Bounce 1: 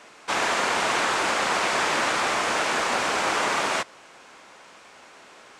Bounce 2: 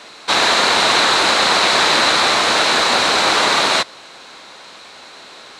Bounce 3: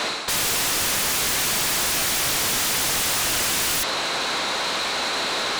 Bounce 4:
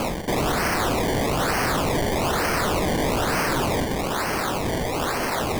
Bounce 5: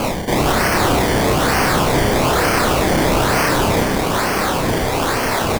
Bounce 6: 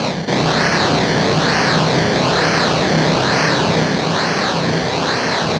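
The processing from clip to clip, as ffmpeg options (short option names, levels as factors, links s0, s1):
-af "equalizer=f=4000:w=4:g=14,volume=2.51"
-af "areverse,acompressor=threshold=0.0562:ratio=4,areverse,aeval=exprs='0.211*sin(PI/2*7.94*val(0)/0.211)':c=same,volume=0.501"
-af "acrusher=samples=23:mix=1:aa=0.000001:lfo=1:lforange=23:lforate=1.1"
-filter_complex "[0:a]asplit=2[s0][s1];[s1]adelay=31,volume=0.75[s2];[s0][s2]amix=inputs=2:normalize=0,asplit=2[s3][s4];[s4]aecho=0:1:445:0.355[s5];[s3][s5]amix=inputs=2:normalize=0,volume=1.68"
-filter_complex "[0:a]asplit=2[s0][s1];[s1]acrusher=samples=23:mix=1:aa=0.000001,volume=0.447[s2];[s0][s2]amix=inputs=2:normalize=0,highpass=140,equalizer=f=160:t=q:w=4:g=8,equalizer=f=320:t=q:w=4:g=-3,equalizer=f=1700:t=q:w=4:g=6,equalizer=f=4100:t=q:w=4:g=10,equalizer=f=6000:t=q:w=4:g=5,lowpass=f=6100:w=0.5412,lowpass=f=6100:w=1.3066,volume=0.841"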